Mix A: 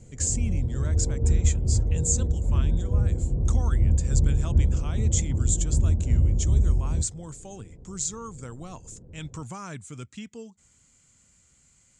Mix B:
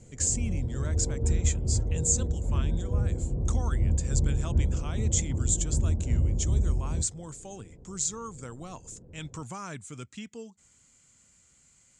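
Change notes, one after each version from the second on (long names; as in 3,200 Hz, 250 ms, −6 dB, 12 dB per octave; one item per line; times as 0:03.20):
master: add low-shelf EQ 160 Hz −5.5 dB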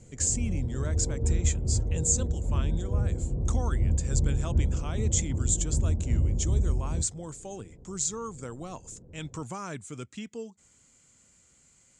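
speech: add parametric band 420 Hz +4.5 dB 1.8 octaves
background: add high-frequency loss of the air 270 metres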